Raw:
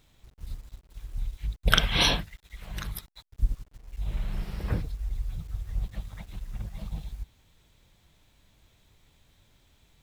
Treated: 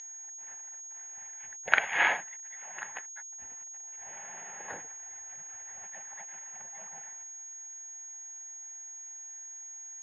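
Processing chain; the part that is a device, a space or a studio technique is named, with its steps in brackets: 5.46–6.64 high shelf 9600 Hz +6.5 dB; toy sound module (decimation joined by straight lines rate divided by 8×; pulse-width modulation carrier 6600 Hz; speaker cabinet 760–4200 Hz, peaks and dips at 820 Hz +9 dB, 1200 Hz -7 dB, 1800 Hz +9 dB)

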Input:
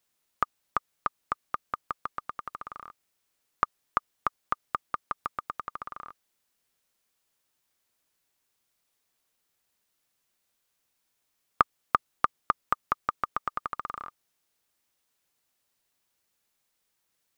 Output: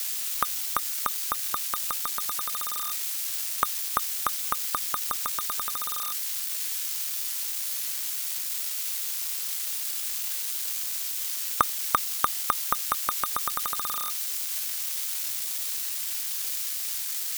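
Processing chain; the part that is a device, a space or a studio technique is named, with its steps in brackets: budget class-D amplifier (switching dead time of 0.066 ms; switching spikes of -16 dBFS)

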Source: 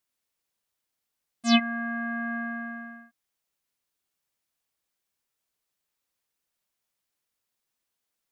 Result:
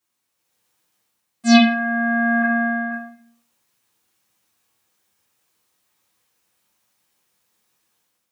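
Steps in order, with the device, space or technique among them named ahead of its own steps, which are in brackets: 2.42–2.91 steep low-pass 4600 Hz 48 dB/oct; far laptop microphone (reverb RT60 0.50 s, pre-delay 6 ms, DRR -6.5 dB; HPF 110 Hz 12 dB/oct; AGC gain up to 7.5 dB)

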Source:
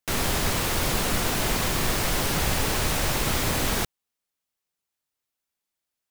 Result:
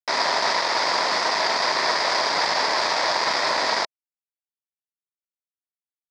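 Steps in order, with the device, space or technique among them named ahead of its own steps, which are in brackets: hand-held game console (bit-crush 4-bit; speaker cabinet 480–5100 Hz, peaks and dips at 640 Hz +7 dB, 970 Hz +10 dB, 1900 Hz +6 dB, 2900 Hz -9 dB, 4900 Hz +10 dB); gain +2 dB

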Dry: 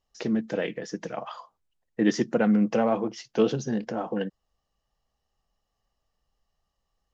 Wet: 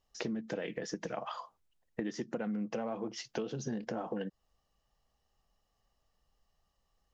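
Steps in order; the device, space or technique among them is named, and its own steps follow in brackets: serial compression, peaks first (compressor 6:1, threshold -29 dBFS, peak gain reduction 12.5 dB; compressor 2:1, threshold -38 dBFS, peak gain reduction 7 dB); gain +1 dB

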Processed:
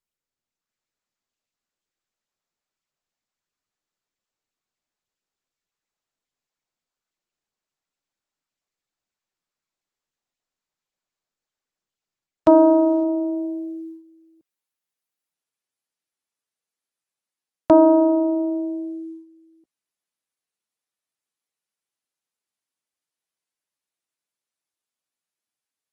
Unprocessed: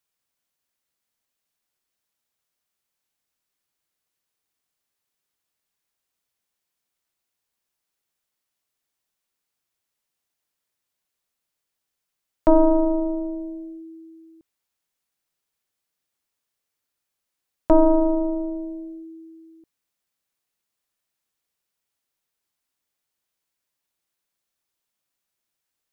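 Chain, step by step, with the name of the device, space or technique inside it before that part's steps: video call (HPF 140 Hz 12 dB/oct; AGC gain up to 6 dB; gate -36 dBFS, range -12 dB; Opus 24 kbps 48000 Hz)

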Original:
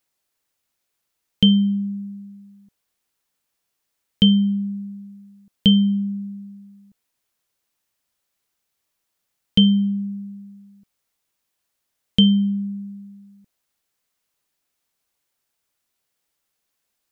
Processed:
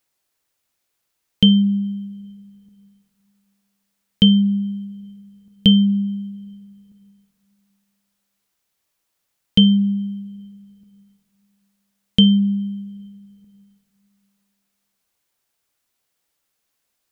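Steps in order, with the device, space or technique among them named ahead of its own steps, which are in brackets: compressed reverb return (on a send at -12 dB: reverb RT60 2.0 s, pre-delay 56 ms + compressor, threshold -34 dBFS, peak gain reduction 17.5 dB); on the sum: gain +2 dB

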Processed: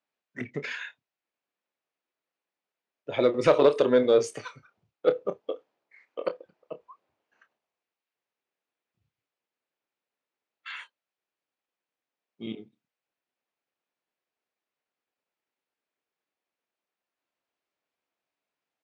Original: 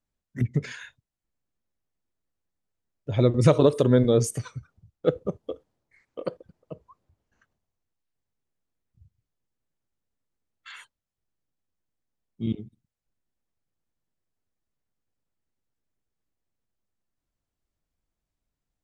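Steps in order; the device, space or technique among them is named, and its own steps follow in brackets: intercom (BPF 450–3900 Hz; bell 2500 Hz +4 dB 0.34 oct; soft clip -13.5 dBFS, distortion -19 dB; doubler 28 ms -11.5 dB); gain +4 dB

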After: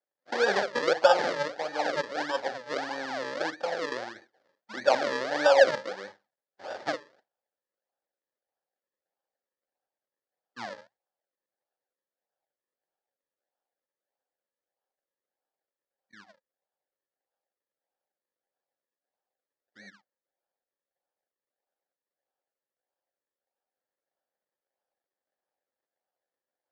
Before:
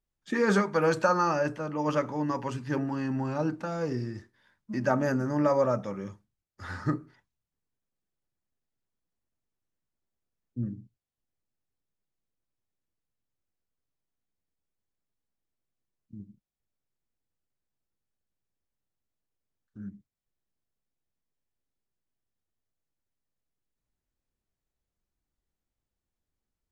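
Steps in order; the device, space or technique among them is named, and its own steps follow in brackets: circuit-bent sampling toy (decimation with a swept rate 41×, swing 100% 1.6 Hz; speaker cabinet 530–5700 Hz, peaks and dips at 540 Hz +9 dB, 780 Hz +8 dB, 1100 Hz -4 dB, 1700 Hz +9 dB, 2600 Hz -5 dB, 4700 Hz +4 dB)

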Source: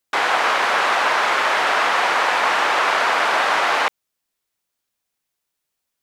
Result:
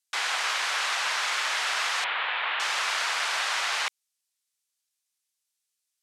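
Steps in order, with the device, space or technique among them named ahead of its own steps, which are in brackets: 2.04–2.6 steep low-pass 3600 Hz 48 dB/oct; piezo pickup straight into a mixer (LPF 8500 Hz 12 dB/oct; differentiator); gain +3 dB

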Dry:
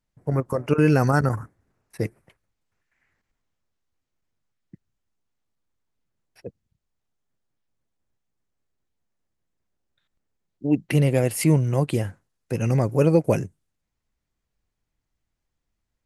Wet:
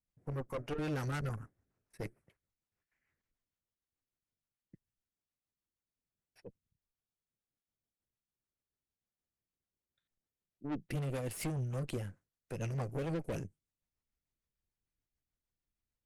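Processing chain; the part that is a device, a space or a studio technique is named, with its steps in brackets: overdriven rotary cabinet (tube stage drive 26 dB, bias 0.75; rotary speaker horn 6.7 Hz); gain -6 dB

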